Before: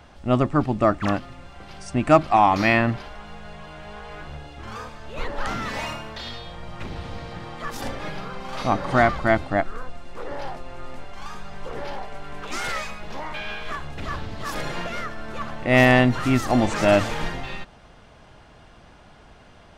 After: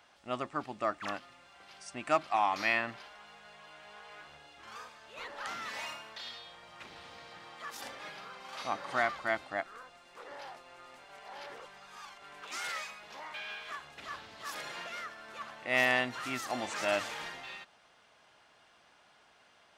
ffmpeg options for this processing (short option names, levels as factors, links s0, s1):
-filter_complex "[0:a]asplit=3[s0][s1][s2];[s0]atrim=end=11.092[s3];[s1]atrim=start=11.088:end=12.222,asetpts=PTS-STARTPTS,areverse[s4];[s2]atrim=start=12.218[s5];[s3][s4]acrossfade=d=0.004:c1=hsin:c2=hsin[s6];[s6][s5]acrossfade=d=0.004:c1=hsin:c2=hsin,highpass=f=1300:p=1,volume=0.447"